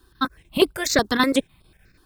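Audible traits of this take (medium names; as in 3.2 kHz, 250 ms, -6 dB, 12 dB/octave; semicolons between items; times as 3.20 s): a quantiser's noise floor 12-bit, dither none; chopped level 6.7 Hz, depth 60%, duty 85%; notches that jump at a steady rate 8.1 Hz 590–6400 Hz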